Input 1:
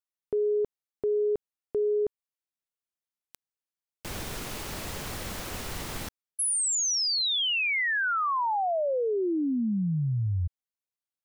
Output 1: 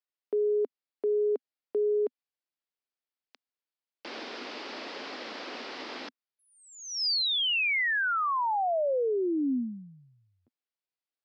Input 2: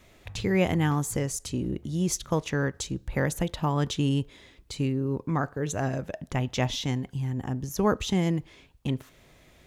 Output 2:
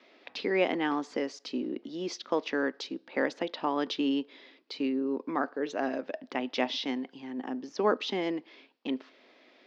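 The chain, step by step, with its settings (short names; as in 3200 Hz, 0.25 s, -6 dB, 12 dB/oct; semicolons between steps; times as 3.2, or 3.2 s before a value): Chebyshev band-pass 250–5000 Hz, order 4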